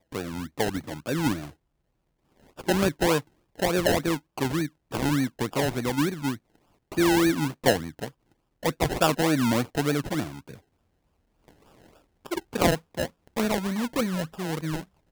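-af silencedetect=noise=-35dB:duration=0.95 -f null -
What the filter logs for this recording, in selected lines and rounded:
silence_start: 1.48
silence_end: 2.59 | silence_duration: 1.11
silence_start: 10.54
silence_end: 12.26 | silence_duration: 1.72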